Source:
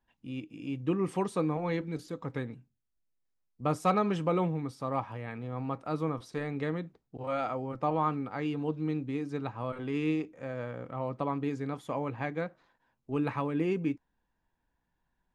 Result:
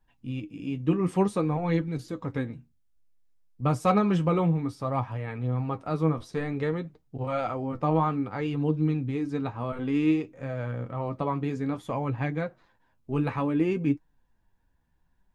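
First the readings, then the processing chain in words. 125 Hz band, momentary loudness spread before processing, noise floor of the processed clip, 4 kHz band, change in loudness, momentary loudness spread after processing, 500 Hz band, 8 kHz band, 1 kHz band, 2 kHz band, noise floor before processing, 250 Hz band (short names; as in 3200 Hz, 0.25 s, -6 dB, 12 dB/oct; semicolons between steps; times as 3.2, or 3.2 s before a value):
+7.5 dB, 10 LU, -68 dBFS, +2.5 dB, +5.0 dB, 10 LU, +3.5 dB, n/a, +2.5 dB, +2.5 dB, -80 dBFS, +5.5 dB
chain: low shelf 130 Hz +11 dB; flange 0.57 Hz, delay 6.2 ms, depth 6.8 ms, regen +43%; gain +6.5 dB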